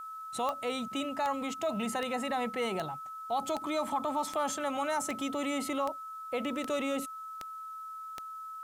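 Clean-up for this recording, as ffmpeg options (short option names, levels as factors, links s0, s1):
-af "adeclick=t=4,bandreject=f=1300:w=30,agate=range=0.0891:threshold=0.0178"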